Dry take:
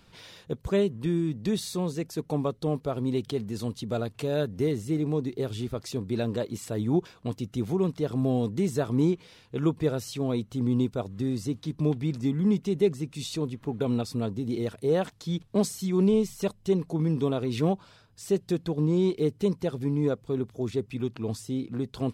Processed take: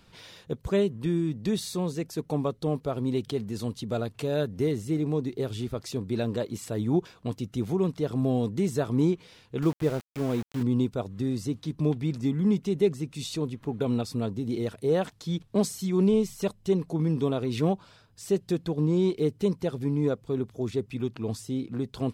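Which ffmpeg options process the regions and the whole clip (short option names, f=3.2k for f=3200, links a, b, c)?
-filter_complex "[0:a]asettb=1/sr,asplit=3[a][b][c];[a]atrim=end=9.624[d];[b]atrim=start=9.62:end=10.63,asetpts=PTS-STARTPTS,afade=t=in:d=0.004:c=qsin,afade=t=out:st=1.006:d=0.004:c=qsin,lowpass=2.9k,aeval=exprs='val(0)*gte(abs(val(0)),0.0168)':c=same[e];[c]atrim=start=10.626[f];[d][e]acrossfade=d=0.004:c1=hsin:c2=qsin[g];[g][f]acrossfade=d=0.004:c1=qsin:c2=hsin"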